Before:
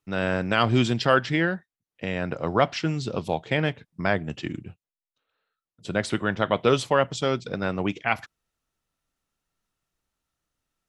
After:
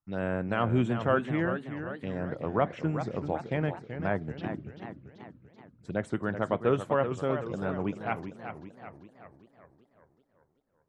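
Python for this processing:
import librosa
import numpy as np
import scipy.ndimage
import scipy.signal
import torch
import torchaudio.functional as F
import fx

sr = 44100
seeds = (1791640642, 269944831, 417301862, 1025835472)

y = fx.high_shelf(x, sr, hz=2400.0, db=-11.0)
y = fx.env_phaser(y, sr, low_hz=440.0, high_hz=4800.0, full_db=-23.0)
y = fx.echo_warbled(y, sr, ms=384, feedback_pct=52, rate_hz=2.8, cents=157, wet_db=-9)
y = y * 10.0 ** (-4.5 / 20.0)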